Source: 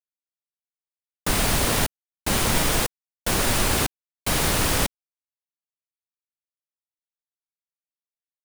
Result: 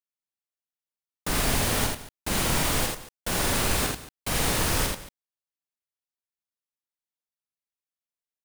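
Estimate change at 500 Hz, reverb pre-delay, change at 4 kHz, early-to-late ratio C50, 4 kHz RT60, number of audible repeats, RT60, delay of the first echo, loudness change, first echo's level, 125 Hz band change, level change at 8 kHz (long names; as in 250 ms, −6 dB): −3.0 dB, no reverb audible, −3.0 dB, no reverb audible, no reverb audible, 4, no reverb audible, 47 ms, −3.0 dB, −5.0 dB, −3.0 dB, −3.0 dB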